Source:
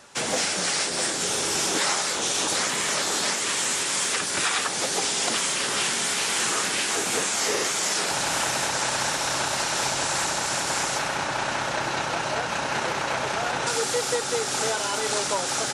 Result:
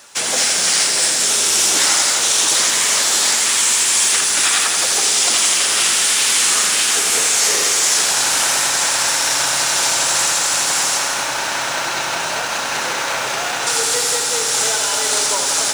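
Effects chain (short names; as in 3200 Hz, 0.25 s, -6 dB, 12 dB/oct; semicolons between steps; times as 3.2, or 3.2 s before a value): tilt +2.5 dB/oct; in parallel at -4 dB: companded quantiser 4-bit; on the sum: lo-fi delay 83 ms, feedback 80%, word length 6-bit, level -6 dB; gain -1.5 dB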